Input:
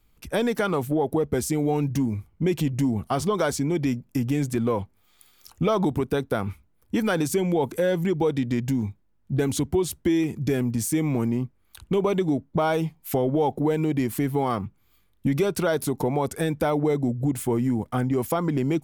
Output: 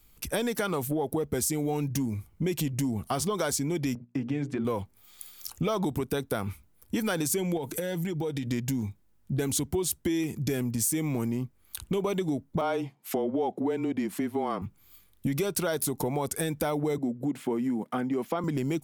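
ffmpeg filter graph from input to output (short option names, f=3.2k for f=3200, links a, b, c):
-filter_complex "[0:a]asettb=1/sr,asplit=3[a][b][c];[a]atrim=end=3.954[d];[b]atrim=start=3.95:end=4.65,asetpts=PTS-STARTPTS,afade=t=in:d=0.004:c=qsin,afade=t=out:st=0.696:d=0.004:c=qsin,bandreject=f=60:t=h:w=6,bandreject=f=120:t=h:w=6,bandreject=f=180:t=h:w=6,bandreject=f=240:t=h:w=6,bandreject=f=300:t=h:w=6,bandreject=f=360:t=h:w=6,bandreject=f=420:t=h:w=6,agate=range=-12dB:threshold=-42dB:ratio=16:release=100:detection=peak,highpass=120,lowpass=2.3k[e];[c]atrim=start=4.646[f];[d][e]acrossfade=d=0.004:c1=hsin:c2=qsin[g];[g][f]acrossfade=d=0.004:c1=qsin:c2=hsin,asettb=1/sr,asplit=3[h][i][j];[h]atrim=end=7.574[k];[i]atrim=start=7.57:end=8.47,asetpts=PTS-STARTPTS,afade=t=in:d=0.004:c=qsin,afade=t=out:st=0.896:d=0.004:c=qsin,bandreject=f=1.1k:w=9.9,aecho=1:1:6.5:0.34,atrim=end_sample=39690,acompressor=threshold=-27dB:ratio=3:attack=3.2:release=140:knee=1:detection=peak[l];[j]atrim=start=8.466[m];[k][l]acrossfade=d=0.004:c1=hsin:c2=qsin[n];[n][m]acrossfade=d=0.004:c1=qsin:c2=hsin,asettb=1/sr,asplit=3[o][p][q];[o]atrim=end=12.614[r];[p]atrim=start=12.61:end=14.62,asetpts=PTS-STARTPTS,afade=t=in:d=0.004:c=qsin,afade=t=out:st=2.006:d=0.004:c=qsin,highpass=f=210:w=0.5412,highpass=f=210:w=1.3066,aemphasis=mode=reproduction:type=75fm,afreqshift=-24[s];[q]atrim=start=14.616[t];[r][s]acrossfade=d=0.004:c1=hsin:c2=qsin[u];[u][t]acrossfade=d=0.004:c1=qsin:c2=hsin,asettb=1/sr,asplit=3[v][w][x];[v]atrim=end=16.984[y];[w]atrim=start=16.98:end=18.44,asetpts=PTS-STARTPTS,afade=t=in:d=0.004:c=qsin,afade=t=out:st=1.456:d=0.004:c=qsin,highpass=f=190:w=0.5412,highpass=f=190:w=1.3066,acrossover=split=5200[z][aa];[aa]acompressor=threshold=-50dB:ratio=4:attack=1:release=60[ab];[z][ab]amix=inputs=2:normalize=0,bass=f=250:g=3,treble=f=4k:g=-9[ac];[x]atrim=start=18.436[ad];[y][ac]acrossfade=d=0.004:c1=hsin:c2=qsin[ae];[ae][ad]acrossfade=d=0.004:c1=qsin:c2=hsin,highshelf=f=4.2k:g=11,acompressor=threshold=-33dB:ratio=2,volume=1.5dB"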